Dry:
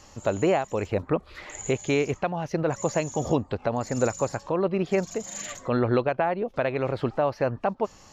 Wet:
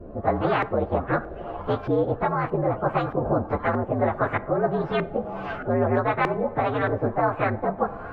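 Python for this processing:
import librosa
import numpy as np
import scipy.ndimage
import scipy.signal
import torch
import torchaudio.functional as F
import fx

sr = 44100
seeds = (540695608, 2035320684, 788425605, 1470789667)

y = fx.partial_stretch(x, sr, pct=118)
y = fx.lowpass(y, sr, hz=2900.0, slope=6)
y = fx.notch(y, sr, hz=950.0, q=7.4)
y = fx.filter_lfo_lowpass(y, sr, shape='saw_up', hz=1.6, low_hz=400.0, high_hz=1600.0, q=2.7)
y = fx.rev_double_slope(y, sr, seeds[0], early_s=0.35, late_s=4.8, knee_db=-22, drr_db=18.0)
y = fx.spectral_comp(y, sr, ratio=2.0)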